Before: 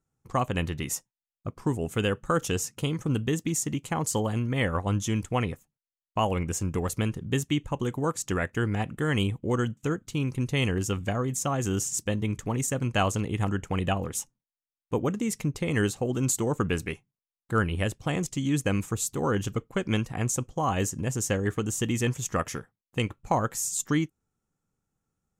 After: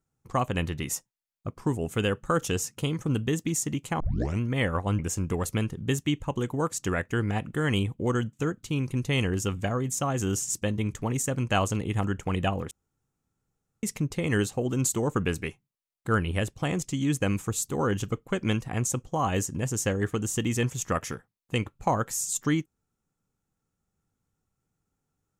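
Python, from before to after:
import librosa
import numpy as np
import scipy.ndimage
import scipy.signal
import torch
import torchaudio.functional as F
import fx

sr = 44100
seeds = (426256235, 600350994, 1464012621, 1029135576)

y = fx.edit(x, sr, fx.tape_start(start_s=4.0, length_s=0.4),
    fx.cut(start_s=4.99, length_s=1.44),
    fx.room_tone_fill(start_s=14.15, length_s=1.12), tone=tone)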